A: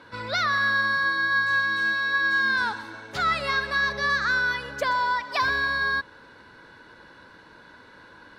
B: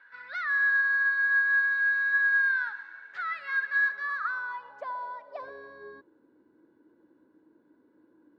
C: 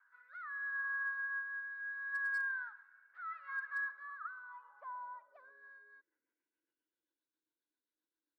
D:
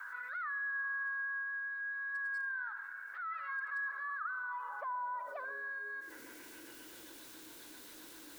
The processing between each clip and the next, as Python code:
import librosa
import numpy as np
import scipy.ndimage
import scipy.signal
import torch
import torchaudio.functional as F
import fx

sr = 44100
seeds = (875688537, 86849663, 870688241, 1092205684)

y1 = fx.filter_sweep_bandpass(x, sr, from_hz=1700.0, to_hz=310.0, start_s=3.83, end_s=6.19, q=5.7)
y2 = fx.rotary_switch(y1, sr, hz=0.75, then_hz=7.5, switch_at_s=5.35)
y2 = fx.filter_sweep_bandpass(y2, sr, from_hz=1200.0, to_hz=3800.0, start_s=5.19, end_s=7.24, q=4.5)
y2 = np.clip(y2, -10.0 ** (-29.5 / 20.0), 10.0 ** (-29.5 / 20.0))
y2 = y2 * librosa.db_to_amplitude(-2.5)
y3 = fx.rider(y2, sr, range_db=10, speed_s=2.0)
y3 = y3 + 10.0 ** (-18.5 / 20.0) * np.pad(y3, (int(82 * sr / 1000.0), 0))[:len(y3)]
y3 = fx.env_flatten(y3, sr, amount_pct=70)
y3 = y3 * librosa.db_to_amplitude(-2.5)